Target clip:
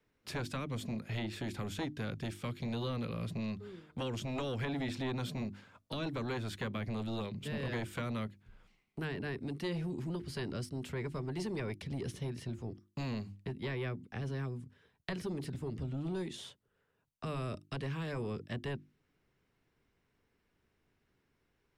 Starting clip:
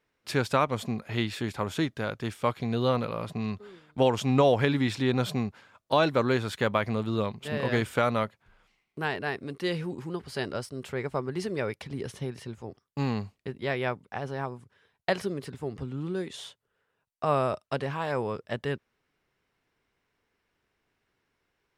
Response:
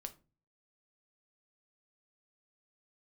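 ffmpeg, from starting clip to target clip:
-filter_complex "[0:a]acrossover=split=380|770|1600[link_01][link_02][link_03][link_04];[link_01]acompressor=threshold=-38dB:ratio=4[link_05];[link_02]acompressor=threshold=-29dB:ratio=4[link_06];[link_03]acompressor=threshold=-34dB:ratio=4[link_07];[link_04]acompressor=threshold=-41dB:ratio=4[link_08];[link_05][link_06][link_07][link_08]amix=inputs=4:normalize=0,bandreject=frequency=50:width_type=h:width=6,bandreject=frequency=100:width_type=h:width=6,bandreject=frequency=150:width_type=h:width=6,bandreject=frequency=200:width_type=h:width=6,bandreject=frequency=250:width_type=h:width=6,bandreject=frequency=300:width_type=h:width=6,bandreject=frequency=350:width_type=h:width=6,acrossover=split=350|1600|1700[link_09][link_10][link_11][link_12];[link_09]aeval=exprs='0.0316*sin(PI/2*1.78*val(0)/0.0316)':channel_layout=same[link_13];[link_10]acompressor=threshold=-53dB:ratio=6[link_14];[link_13][link_14][link_11][link_12]amix=inputs=4:normalize=0,volume=-3.5dB"

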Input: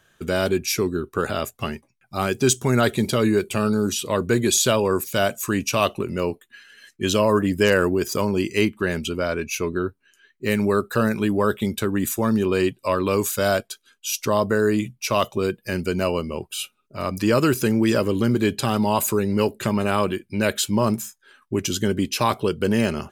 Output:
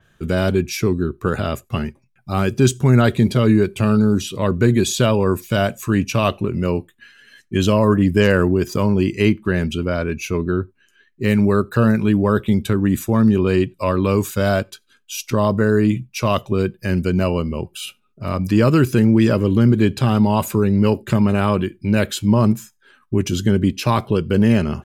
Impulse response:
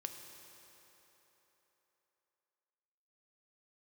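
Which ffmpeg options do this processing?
-filter_complex "[0:a]bass=frequency=250:gain=9,treble=frequency=4000:gain=-4,atempo=0.93,asplit=2[link_01][link_02];[1:a]atrim=start_sample=2205,atrim=end_sample=4410[link_03];[link_02][link_03]afir=irnorm=-1:irlink=0,volume=-15.5dB[link_04];[link_01][link_04]amix=inputs=2:normalize=0,adynamicequalizer=threshold=0.01:dfrequency=5500:dqfactor=0.7:tfrequency=5500:tqfactor=0.7:attack=5:release=100:ratio=0.375:range=2:mode=cutabove:tftype=highshelf"

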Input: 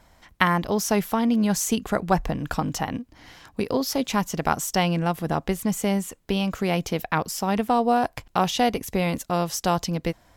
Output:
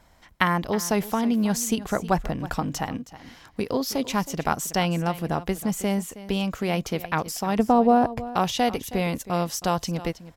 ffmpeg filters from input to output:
ffmpeg -i in.wav -filter_complex "[0:a]asettb=1/sr,asplit=3[link_01][link_02][link_03];[link_01]atrim=end=7.594[link_04];[link_02]atrim=start=7.59:end=8.24,asetpts=PTS-STARTPTS,afade=type=in:duration=0.004:curve=qsin,afade=type=out:start_time=0.646:duration=0.004:curve=qsin,tiltshelf=frequency=1200:gain=7[link_05];[link_03]atrim=start=8.236[link_06];[link_04][link_05]acrossfade=duration=0.004:curve1=hsin:curve2=qsin[link_07];[link_07][link_06]acrossfade=duration=0.004:curve1=qsin:curve2=hsin,asplit=2[link_08][link_09];[link_09]aecho=0:1:319:0.158[link_10];[link_08][link_10]amix=inputs=2:normalize=0,volume=-1.5dB" out.wav

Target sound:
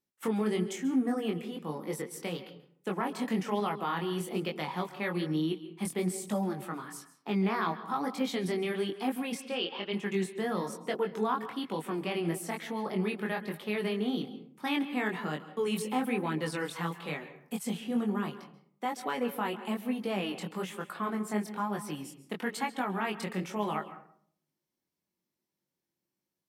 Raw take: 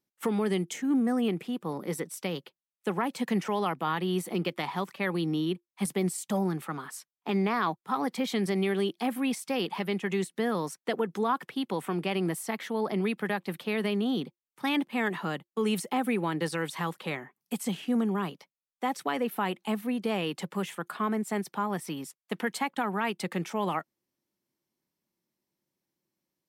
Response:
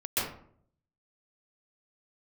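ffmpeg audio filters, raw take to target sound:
-filter_complex "[0:a]flanger=delay=19:depth=4.9:speed=1.1,asplit=3[link_01][link_02][link_03];[link_01]afade=type=out:start_time=9.4:duration=0.02[link_04];[link_02]highpass=330,equalizer=frequency=890:width_type=q:width=4:gain=-8,equalizer=frequency=2000:width_type=q:width=4:gain=-4,equalizer=frequency=3000:width_type=q:width=4:gain=7,lowpass=frequency=4600:width=0.5412,lowpass=frequency=4600:width=1.3066,afade=type=in:start_time=9.4:duration=0.02,afade=type=out:start_time=9.92:duration=0.02[link_05];[link_03]afade=type=in:start_time=9.92:duration=0.02[link_06];[link_04][link_05][link_06]amix=inputs=3:normalize=0,asplit=2[link_07][link_08];[1:a]atrim=start_sample=2205,adelay=11[link_09];[link_08][link_09]afir=irnorm=-1:irlink=0,volume=-21.5dB[link_10];[link_07][link_10]amix=inputs=2:normalize=0"

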